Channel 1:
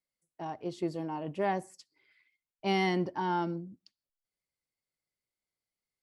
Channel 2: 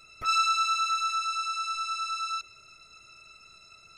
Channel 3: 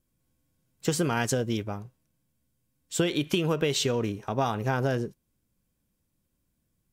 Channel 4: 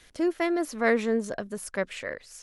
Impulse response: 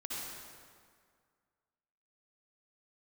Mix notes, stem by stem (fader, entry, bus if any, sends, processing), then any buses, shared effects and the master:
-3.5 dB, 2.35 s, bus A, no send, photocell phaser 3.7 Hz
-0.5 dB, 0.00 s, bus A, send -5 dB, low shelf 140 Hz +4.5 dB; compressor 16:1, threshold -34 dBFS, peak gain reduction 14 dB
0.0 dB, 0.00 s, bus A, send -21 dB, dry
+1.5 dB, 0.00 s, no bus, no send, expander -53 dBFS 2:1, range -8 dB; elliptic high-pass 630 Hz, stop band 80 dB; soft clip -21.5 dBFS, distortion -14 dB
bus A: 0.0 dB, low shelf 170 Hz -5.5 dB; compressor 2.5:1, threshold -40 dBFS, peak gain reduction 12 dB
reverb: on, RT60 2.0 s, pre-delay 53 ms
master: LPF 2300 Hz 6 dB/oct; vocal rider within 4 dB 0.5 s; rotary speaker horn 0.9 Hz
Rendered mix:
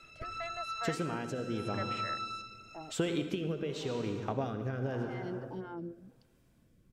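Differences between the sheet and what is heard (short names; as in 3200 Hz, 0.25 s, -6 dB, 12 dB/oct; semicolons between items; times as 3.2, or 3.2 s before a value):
stem 3 0.0 dB -> +10.0 dB; stem 4 +1.5 dB -> -7.5 dB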